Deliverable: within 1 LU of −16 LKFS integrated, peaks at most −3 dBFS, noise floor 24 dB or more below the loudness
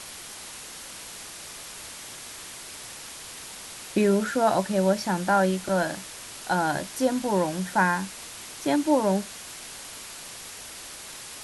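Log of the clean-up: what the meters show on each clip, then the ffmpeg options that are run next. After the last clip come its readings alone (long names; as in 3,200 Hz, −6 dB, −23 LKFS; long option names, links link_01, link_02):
background noise floor −41 dBFS; target noise floor −51 dBFS; integrated loudness −26.5 LKFS; sample peak −10.5 dBFS; target loudness −16.0 LKFS
→ -af "afftdn=noise_reduction=10:noise_floor=-41"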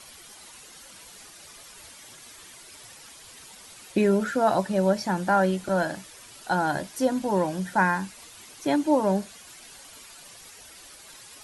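background noise floor −48 dBFS; target noise floor −49 dBFS
→ -af "afftdn=noise_reduction=6:noise_floor=-48"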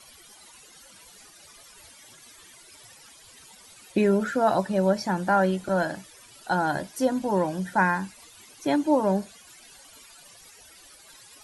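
background noise floor −52 dBFS; integrated loudness −25.0 LKFS; sample peak −10.5 dBFS; target loudness −16.0 LKFS
→ -af "volume=9dB,alimiter=limit=-3dB:level=0:latency=1"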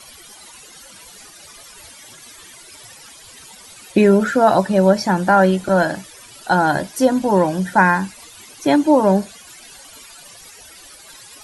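integrated loudness −16.0 LKFS; sample peak −3.0 dBFS; background noise floor −43 dBFS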